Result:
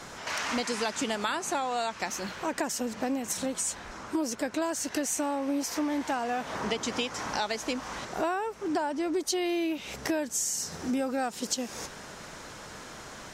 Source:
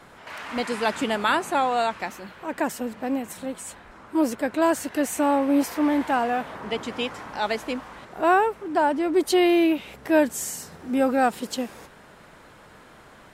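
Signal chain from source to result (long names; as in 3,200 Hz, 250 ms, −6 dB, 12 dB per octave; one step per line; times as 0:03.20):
parametric band 6,000 Hz +14 dB 0.91 octaves
downward compressor 10 to 1, threshold −31 dBFS, peak gain reduction 17.5 dB
level +4 dB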